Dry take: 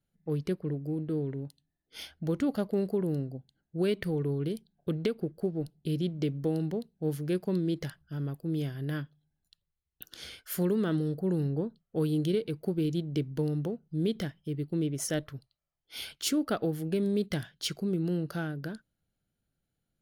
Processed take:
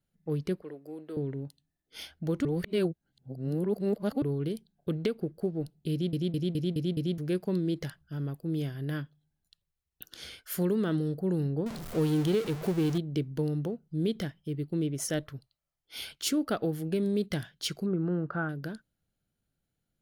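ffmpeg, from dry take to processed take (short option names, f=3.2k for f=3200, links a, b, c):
-filter_complex "[0:a]asettb=1/sr,asplit=3[a][b][c];[a]atrim=end=0.624[d];[b]atrim=start=0.62:end=1.17,asetpts=PTS-STARTPTS,afade=t=in:d=0.004:c=qsin,afade=t=out:st=0.546:d=0.004:c=qsin,highpass=500[e];[c]atrim=start=1.166[f];[d][e]acrossfade=d=0.004:c1=hsin:c2=qsin[g];[g][f]acrossfade=d=0.004:c1=qsin:c2=hsin,asettb=1/sr,asplit=3[h][i][j];[h]atrim=end=11.664[k];[i]atrim=start=11.66:end=12.98,asetpts=PTS-STARTPTS,afade=t=in:d=0.004:c=qsin,afade=t=out:st=1.316:d=0.004:c=qsin,aeval=exprs='val(0)+0.5*0.0211*sgn(val(0))':c=same[l];[j]atrim=start=12.976[m];[k][l]acrossfade=d=0.004:c1=hsin:c2=qsin[n];[n][m]acrossfade=d=0.004:c1=qsin:c2=hsin,asettb=1/sr,asplit=3[o][p][q];[o]atrim=end=17.864[r];[p]atrim=start=17.86:end=18.49,asetpts=PTS-STARTPTS,afade=t=in:d=0.004:c=qsin,afade=t=out:st=0.626:d=0.004:c=qsin,lowpass=f=1.3k:t=q:w=2.7[s];[q]atrim=start=18.486[t];[r][s]acrossfade=d=0.004:c1=hsin:c2=qsin[u];[u][t]acrossfade=d=0.004:c1=qsin:c2=hsin,asplit=9[v][w][x][y][z][aa][ab][ac][ad];[v]atrim=end=2.452[ae];[w]atrim=start=2.448:end=4.222,asetpts=PTS-STARTPTS,areverse[af];[x]atrim=start=4.218:end=6.132[ag];[y]atrim=start=5.918:end=6.132[ah];[z]atrim=start=5.918:end=6.132[ai];[aa]atrim=start=5.918:end=6.132[aj];[ab]atrim=start=5.918:end=6.132[ak];[ac]atrim=start=5.918:end=6.132[al];[ad]atrim=start=7.178[am];[ae][af]acrossfade=d=0.004:c1=hsin:c2=hsin[an];[an][ag]acrossfade=d=0.004:c1=hsin:c2=hsin[ao];[ao][ah]acrossfade=d=0.004:c1=hsin:c2=hsin[ap];[ap][ai]acrossfade=d=0.004:c1=hsin:c2=hsin[aq];[aq][aj]acrossfade=d=0.004:c1=hsin:c2=hsin[ar];[ar][ak]acrossfade=d=0.004:c1=hsin:c2=hsin[as];[as][al]acrossfade=d=0.004:c1=hsin:c2=hsin[at];[at][am]acrossfade=d=0.004:c1=hsin:c2=hsin"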